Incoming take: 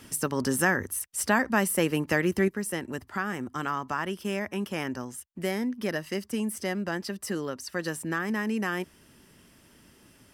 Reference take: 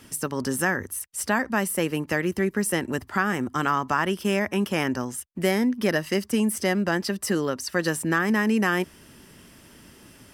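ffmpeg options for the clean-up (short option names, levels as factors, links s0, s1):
-af "asetnsamples=n=441:p=0,asendcmd='2.48 volume volume 7dB',volume=1"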